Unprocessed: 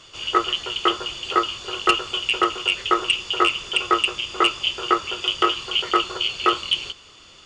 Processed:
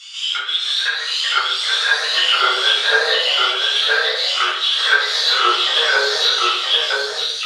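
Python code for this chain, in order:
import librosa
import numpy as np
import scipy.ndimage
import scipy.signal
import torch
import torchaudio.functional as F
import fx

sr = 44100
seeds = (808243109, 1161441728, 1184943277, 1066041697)

p1 = fx.pitch_ramps(x, sr, semitones=5.5, every_ms=1073)
p2 = fx.env_lowpass_down(p1, sr, base_hz=1400.0, full_db=-16.0)
p3 = fx.low_shelf(p2, sr, hz=470.0, db=6.5)
p4 = fx.hpss(p3, sr, part='percussive', gain_db=-8)
p5 = fx.high_shelf(p4, sr, hz=2000.0, db=7.5)
p6 = 10.0 ** (-19.5 / 20.0) * np.tanh(p5 / 10.0 ** (-19.5 / 20.0))
p7 = p5 + (p6 * 10.0 ** (-10.0 / 20.0))
p8 = fx.filter_lfo_highpass(p7, sr, shape='saw_down', hz=0.32, low_hz=540.0, high_hz=2700.0, q=0.96)
p9 = fx.echo_pitch(p8, sr, ms=478, semitones=2, count=3, db_per_echo=-6.0)
p10 = p9 + fx.echo_single(p9, sr, ms=969, db=-3.5, dry=0)
p11 = fx.room_shoebox(p10, sr, seeds[0], volume_m3=810.0, walls='furnished', distance_m=6.9)
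y = p11 * 10.0 ** (-1.5 / 20.0)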